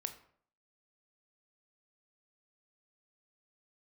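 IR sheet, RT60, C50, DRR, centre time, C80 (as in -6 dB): 0.60 s, 12.0 dB, 8.0 dB, 9 ms, 15.5 dB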